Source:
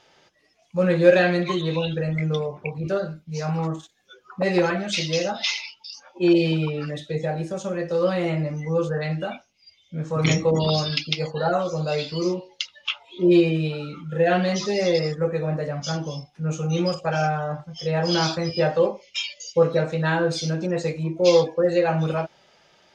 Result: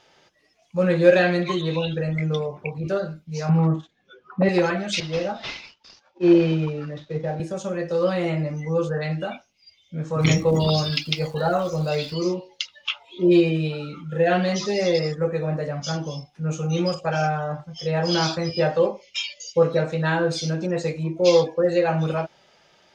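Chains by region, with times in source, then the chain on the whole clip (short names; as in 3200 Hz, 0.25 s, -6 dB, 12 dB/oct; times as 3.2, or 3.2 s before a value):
3.49–4.49 LPF 3000 Hz + bell 180 Hz +8 dB 1.8 oct
5–7.4 CVSD 32 kbps + high shelf 3000 Hz -11 dB + three-band expander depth 40%
10.19–12.13 low shelf 75 Hz +11.5 dB + crackle 460/s -39 dBFS
whole clip: dry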